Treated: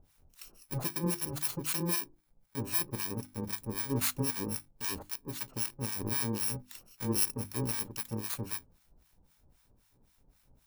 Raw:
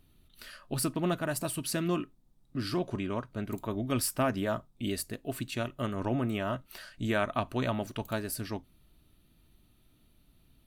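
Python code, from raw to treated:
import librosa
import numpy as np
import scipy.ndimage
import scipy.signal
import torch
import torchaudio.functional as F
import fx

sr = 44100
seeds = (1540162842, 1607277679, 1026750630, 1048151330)

y = fx.bit_reversed(x, sr, seeds[0], block=64)
y = fx.harmonic_tremolo(y, sr, hz=3.8, depth_pct=100, crossover_hz=920.0)
y = fx.hum_notches(y, sr, base_hz=50, count=7)
y = F.gain(torch.from_numpy(y), 2.5).numpy()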